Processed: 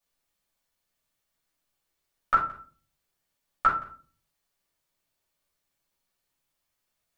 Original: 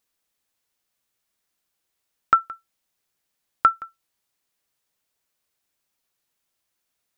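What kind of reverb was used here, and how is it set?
shoebox room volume 260 m³, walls furnished, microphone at 6.1 m; gain -11.5 dB

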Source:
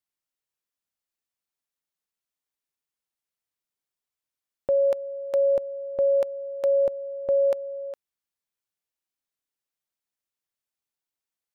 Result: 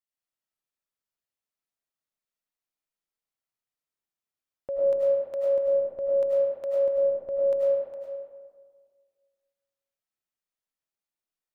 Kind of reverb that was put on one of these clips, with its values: digital reverb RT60 1.7 s, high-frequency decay 0.4×, pre-delay 60 ms, DRR -6.5 dB; gain -9.5 dB

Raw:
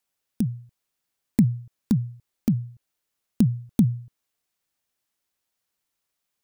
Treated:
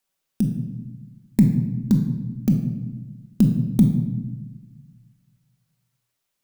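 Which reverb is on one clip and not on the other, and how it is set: shoebox room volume 680 m³, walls mixed, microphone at 1.1 m; gain +1 dB

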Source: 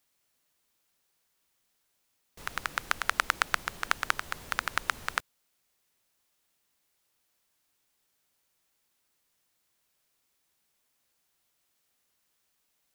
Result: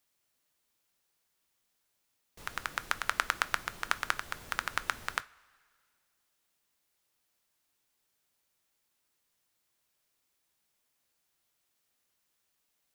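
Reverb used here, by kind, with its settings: two-slope reverb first 0.27 s, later 2 s, from -18 dB, DRR 14 dB; gain -3 dB

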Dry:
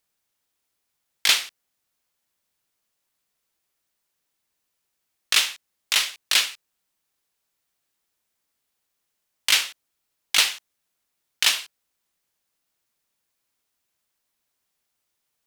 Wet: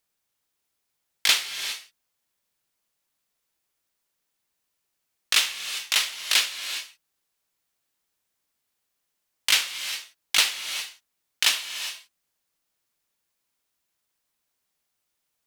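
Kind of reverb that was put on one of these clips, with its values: non-linear reverb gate 0.43 s rising, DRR 9 dB; gain -1.5 dB

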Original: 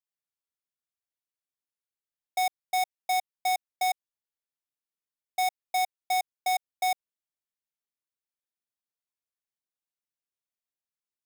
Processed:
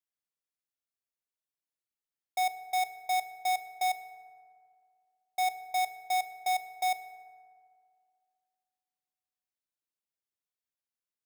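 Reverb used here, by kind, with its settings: FDN reverb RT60 2.2 s, low-frequency decay 0.9×, high-frequency decay 0.4×, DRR 11.5 dB; gain -3.5 dB

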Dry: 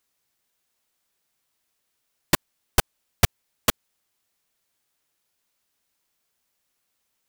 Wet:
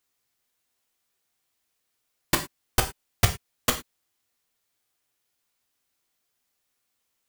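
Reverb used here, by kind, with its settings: non-linear reverb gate 0.13 s falling, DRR 4.5 dB; gain -3 dB

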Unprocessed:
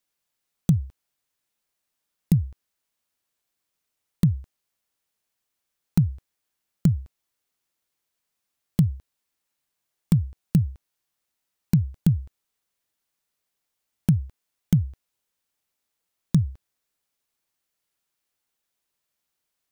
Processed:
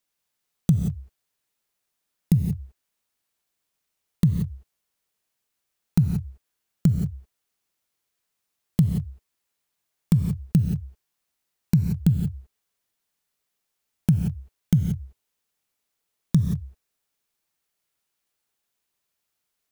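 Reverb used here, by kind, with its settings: non-linear reverb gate 0.2 s rising, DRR 5 dB

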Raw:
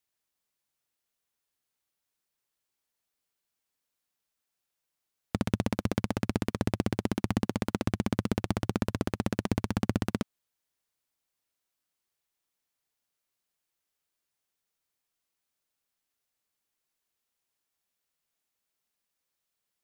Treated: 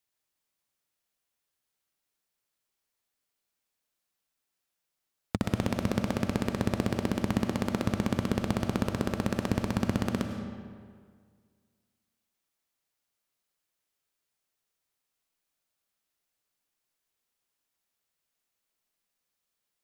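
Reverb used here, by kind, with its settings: digital reverb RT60 1.9 s, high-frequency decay 0.7×, pre-delay 60 ms, DRR 5 dB

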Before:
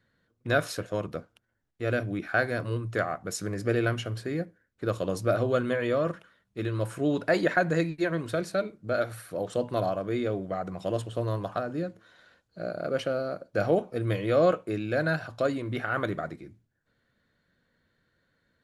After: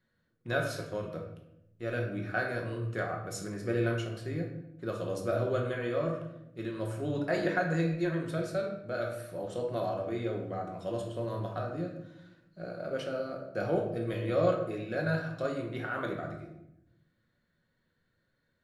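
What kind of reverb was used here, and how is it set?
shoebox room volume 230 m³, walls mixed, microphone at 1 m; gain -8 dB

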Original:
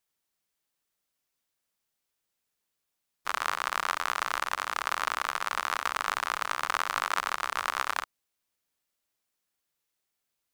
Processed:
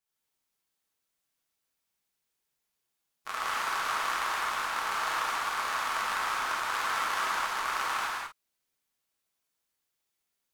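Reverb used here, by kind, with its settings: non-linear reverb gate 0.29 s flat, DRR -8 dB; gain -8.5 dB

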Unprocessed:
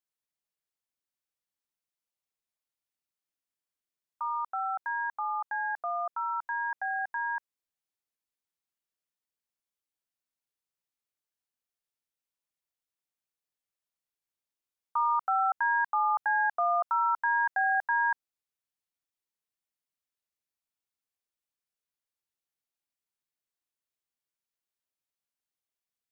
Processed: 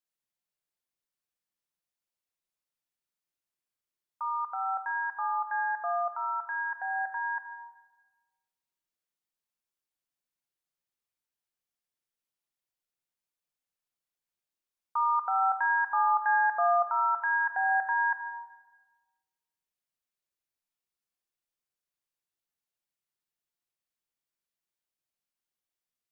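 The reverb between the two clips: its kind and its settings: shoebox room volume 1300 m³, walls mixed, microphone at 0.9 m; gain -1.5 dB

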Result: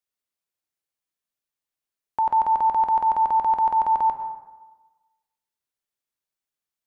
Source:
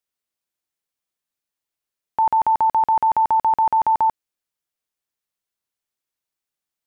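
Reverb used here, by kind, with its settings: plate-style reverb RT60 1.2 s, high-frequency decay 0.45×, pre-delay 90 ms, DRR 8 dB; gain -4 dB

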